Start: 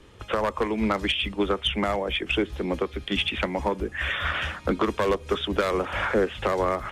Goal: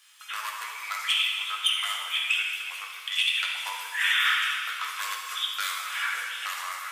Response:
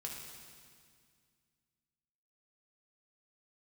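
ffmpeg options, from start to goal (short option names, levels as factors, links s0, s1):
-filter_complex "[0:a]highpass=f=1200:w=0.5412,highpass=f=1200:w=1.3066,aemphasis=mode=production:type=riaa,asettb=1/sr,asplit=3[s0][s1][s2];[s0]atrim=end=3.654[s3];[s1]atrim=start=3.65:end=4.35,asetpts=PTS-STARTPTS,afade=t=in:d=0.004:c=qsin,afade=t=out:st=0.696:d=0.004:c=qsin,acontrast=32[s4];[s2]atrim=start=4.346[s5];[s3][s4]acrossfade=d=0.004:c1=hsin:c2=qsin[s6];[s6][s5]acrossfade=d=0.004:c1=qsin:c2=hsin[s7];[1:a]atrim=start_sample=2205[s8];[s7][s8]afir=irnorm=-1:irlink=0"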